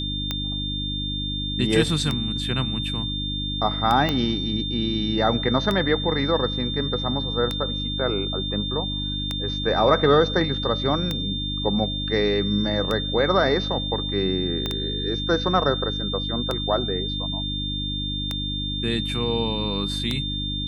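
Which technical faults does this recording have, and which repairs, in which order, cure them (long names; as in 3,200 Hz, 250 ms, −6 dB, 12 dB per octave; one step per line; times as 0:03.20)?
mains hum 50 Hz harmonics 6 −30 dBFS
scratch tick 33 1/3 rpm −11 dBFS
whistle 3,600 Hz −28 dBFS
0:04.09: click −10 dBFS
0:14.66: click −13 dBFS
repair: click removal
hum removal 50 Hz, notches 6
notch filter 3,600 Hz, Q 30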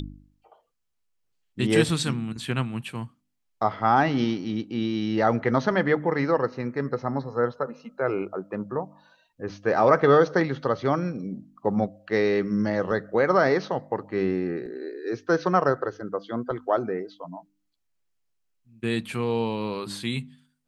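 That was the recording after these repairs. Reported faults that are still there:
0:04.09: click
0:14.66: click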